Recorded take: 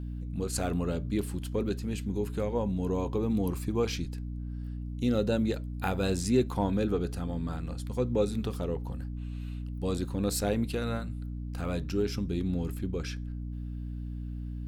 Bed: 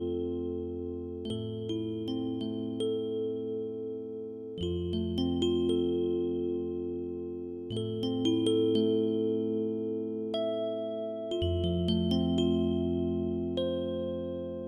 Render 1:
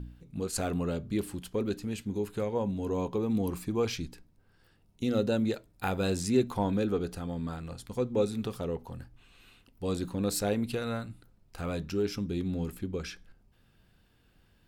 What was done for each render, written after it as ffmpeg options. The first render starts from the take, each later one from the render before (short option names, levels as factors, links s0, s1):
-af "bandreject=f=60:t=h:w=4,bandreject=f=120:t=h:w=4,bandreject=f=180:t=h:w=4,bandreject=f=240:t=h:w=4,bandreject=f=300:t=h:w=4"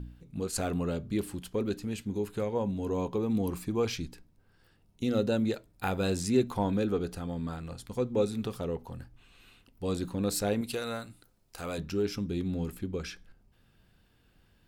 -filter_complex "[0:a]asettb=1/sr,asplit=3[s0][s1][s2];[s0]atrim=end=10.614[s3];[s1]atrim=start=10.61:end=11.78,asetpts=PTS-STARTPTS,afade=t=in:d=0.004:c=qsin,afade=t=out:st=1.166:d=0.004:c=qsin,bass=f=250:g=-8,treble=f=4000:g=7[s4];[s2]atrim=start=11.776[s5];[s3][s4]acrossfade=d=0.004:c1=hsin:c2=qsin[s6];[s6][s5]acrossfade=d=0.004:c1=qsin:c2=hsin"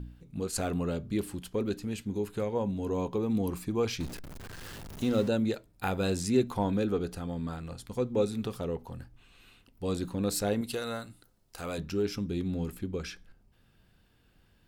-filter_complex "[0:a]asettb=1/sr,asplit=3[s0][s1][s2];[s0]atrim=end=4.004[s3];[s1]atrim=start=4:end=5.28,asetpts=PTS-STARTPTS,afade=t=in:d=0.004:c=qsin,afade=t=out:st=1.276:d=0.004:c=qsin,aeval=exprs='val(0)+0.5*0.0126*sgn(val(0))':c=same[s4];[s2]atrim=start=5.276[s5];[s3][s4]acrossfade=d=0.004:c1=hsin:c2=qsin[s6];[s6][s5]acrossfade=d=0.004:c1=qsin:c2=hsin,asettb=1/sr,asplit=3[s7][s8][s9];[s7]atrim=end=10.444[s10];[s8]atrim=start=10.44:end=11.57,asetpts=PTS-STARTPTS,afade=t=in:d=0.004:c=qsin,afade=t=out:st=1.126:d=0.004:c=qsin,bandreject=f=2400:w=12[s11];[s9]atrim=start=11.566[s12];[s10][s11]acrossfade=d=0.004:c1=hsin:c2=qsin[s13];[s13][s12]acrossfade=d=0.004:c1=qsin:c2=hsin"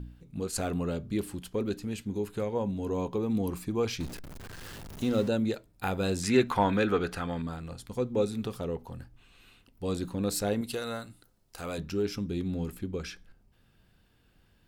-filter_complex "[0:a]asettb=1/sr,asplit=3[s0][s1][s2];[s0]atrim=end=6.234[s3];[s1]atrim=start=6.23:end=7.42,asetpts=PTS-STARTPTS,afade=t=in:d=0.004:c=qsin,afade=t=out:st=1.186:d=0.004:c=qsin,equalizer=f=1700:t=o:w=2.2:g=13.5[s4];[s2]atrim=start=7.416[s5];[s3][s4]acrossfade=d=0.004:c1=hsin:c2=qsin[s6];[s6][s5]acrossfade=d=0.004:c1=qsin:c2=hsin"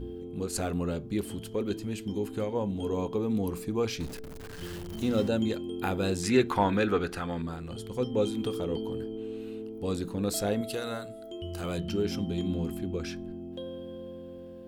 -filter_complex "[1:a]volume=0.398[s0];[0:a][s0]amix=inputs=2:normalize=0"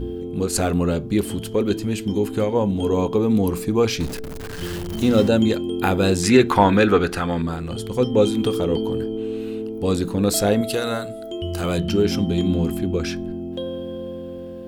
-af "volume=3.35,alimiter=limit=0.794:level=0:latency=1"